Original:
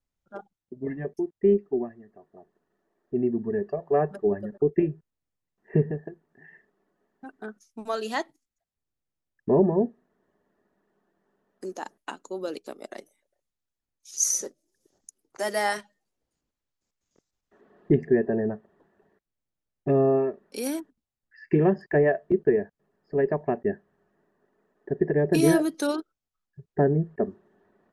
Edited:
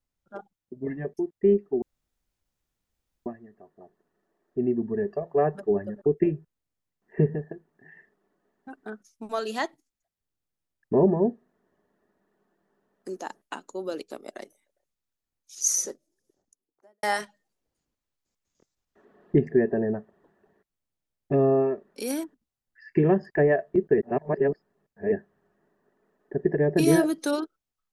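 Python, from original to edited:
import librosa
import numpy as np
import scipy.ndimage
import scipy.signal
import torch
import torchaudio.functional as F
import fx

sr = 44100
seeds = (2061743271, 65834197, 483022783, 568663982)

y = fx.studio_fade_out(x, sr, start_s=14.39, length_s=1.2)
y = fx.edit(y, sr, fx.insert_room_tone(at_s=1.82, length_s=1.44),
    fx.reverse_span(start_s=22.54, length_s=1.14), tone=tone)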